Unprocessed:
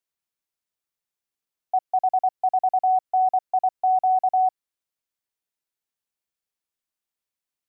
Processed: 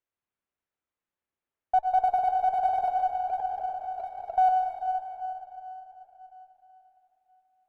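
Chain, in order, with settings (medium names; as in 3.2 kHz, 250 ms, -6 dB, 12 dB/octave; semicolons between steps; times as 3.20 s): local Wiener filter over 9 samples; flange 1.4 Hz, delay 2.1 ms, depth 2 ms, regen -70%; peak limiter -22.5 dBFS, peak gain reduction 3.5 dB; dynamic bell 420 Hz, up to +6 dB, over -46 dBFS, Q 2; 2.88–4.38 s: compressor with a negative ratio -36 dBFS, ratio -0.5; plate-style reverb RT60 3.8 s, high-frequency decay 0.5×, pre-delay 85 ms, DRR 1.5 dB; sliding maximum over 3 samples; trim +5.5 dB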